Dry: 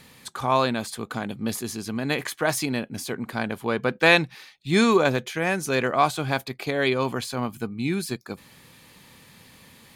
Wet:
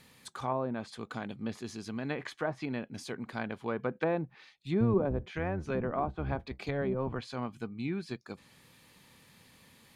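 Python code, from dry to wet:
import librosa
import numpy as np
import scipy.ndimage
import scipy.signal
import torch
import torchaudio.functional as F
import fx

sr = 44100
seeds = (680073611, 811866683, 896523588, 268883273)

y = fx.octave_divider(x, sr, octaves=1, level_db=0.0, at=(4.8, 7.19))
y = fx.env_lowpass_down(y, sr, base_hz=690.0, full_db=-17.5)
y = y * 10.0 ** (-8.5 / 20.0)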